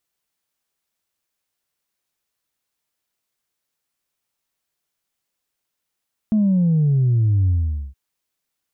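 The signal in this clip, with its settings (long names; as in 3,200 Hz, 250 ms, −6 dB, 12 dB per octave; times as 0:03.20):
bass drop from 220 Hz, over 1.62 s, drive 0 dB, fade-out 0.46 s, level −14 dB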